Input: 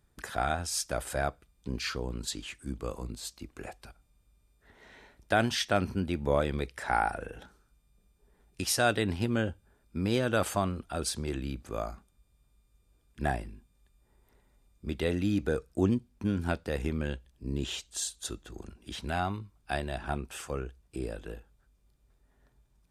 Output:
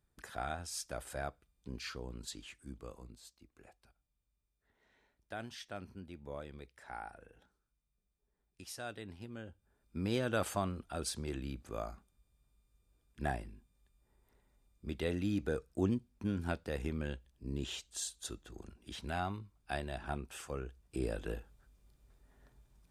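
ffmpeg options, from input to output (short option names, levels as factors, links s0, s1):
-af "volume=3.35,afade=t=out:st=2.48:d=0.89:silence=0.375837,afade=t=in:st=9.45:d=0.53:silence=0.251189,afade=t=in:st=20.6:d=0.75:silence=0.398107"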